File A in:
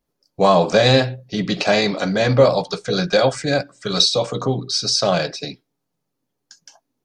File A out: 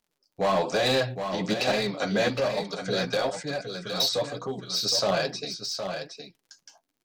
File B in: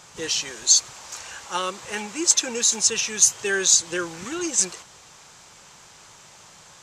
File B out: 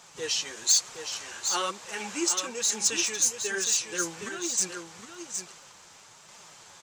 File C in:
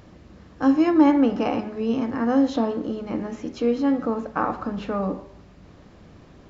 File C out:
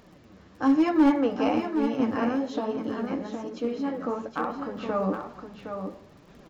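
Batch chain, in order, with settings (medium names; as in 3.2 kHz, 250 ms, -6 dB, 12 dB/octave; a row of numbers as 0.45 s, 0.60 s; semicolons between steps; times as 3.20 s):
bass shelf 150 Hz -7.5 dB; crackle 29 per s -44 dBFS; flange 1.1 Hz, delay 4.1 ms, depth 8 ms, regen +23%; in parallel at -4.5 dB: wavefolder -18 dBFS; on the sum: random-step tremolo; on a send: delay 765 ms -7.5 dB; on the sum: normalise loudness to -27 LUFS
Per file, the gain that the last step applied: -5.0 dB, -1.5 dB, 0.0 dB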